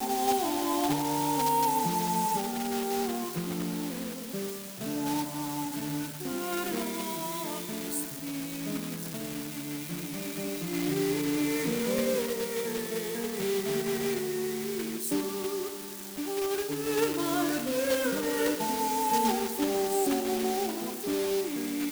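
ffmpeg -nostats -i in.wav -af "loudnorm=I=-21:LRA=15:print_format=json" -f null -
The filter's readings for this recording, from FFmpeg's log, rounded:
"input_i" : "-30.1",
"input_tp" : "-14.6",
"input_lra" : "5.5",
"input_thresh" : "-40.1",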